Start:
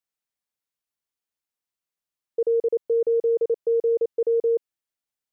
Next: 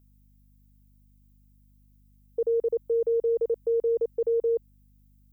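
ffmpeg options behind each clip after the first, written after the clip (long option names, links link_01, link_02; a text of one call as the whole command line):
ffmpeg -i in.wav -af "aemphasis=mode=production:type=bsi,aeval=exprs='val(0)+0.00141*(sin(2*PI*50*n/s)+sin(2*PI*2*50*n/s)/2+sin(2*PI*3*50*n/s)/3+sin(2*PI*4*50*n/s)/4+sin(2*PI*5*50*n/s)/5)':channel_layout=same,volume=-1.5dB" out.wav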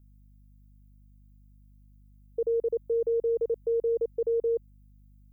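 ffmpeg -i in.wav -af "lowshelf=frequency=380:gain=10,volume=-6dB" out.wav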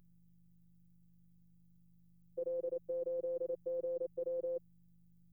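ffmpeg -i in.wav -af "afftfilt=real='hypot(re,im)*cos(PI*b)':imag='0':win_size=1024:overlap=0.75,volume=-2.5dB" out.wav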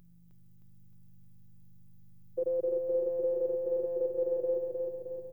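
ffmpeg -i in.wav -af "aecho=1:1:310|620|930|1240|1550|1860|2170|2480:0.631|0.353|0.198|0.111|0.0621|0.0347|0.0195|0.0109,volume=7.5dB" out.wav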